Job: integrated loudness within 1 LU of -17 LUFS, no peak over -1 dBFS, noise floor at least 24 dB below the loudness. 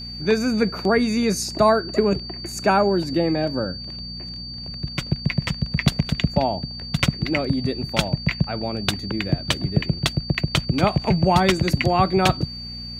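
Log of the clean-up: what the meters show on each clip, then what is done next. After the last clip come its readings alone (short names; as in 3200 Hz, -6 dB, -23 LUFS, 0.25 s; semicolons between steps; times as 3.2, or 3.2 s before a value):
hum 60 Hz; harmonics up to 240 Hz; hum level -36 dBFS; steady tone 4600 Hz; tone level -33 dBFS; loudness -22.0 LUFS; peak -3.5 dBFS; loudness target -17.0 LUFS
-> de-hum 60 Hz, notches 4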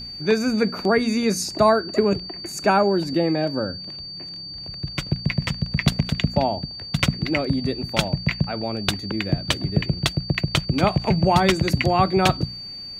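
hum none; steady tone 4600 Hz; tone level -33 dBFS
-> notch 4600 Hz, Q 30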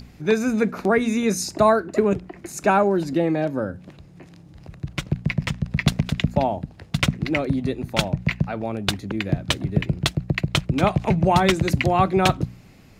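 steady tone none; loudness -22.5 LUFS; peak -3.5 dBFS; loudness target -17.0 LUFS
-> gain +5.5 dB; limiter -1 dBFS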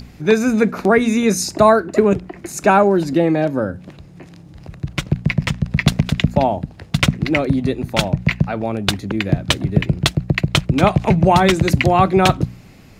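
loudness -17.0 LUFS; peak -1.0 dBFS; noise floor -42 dBFS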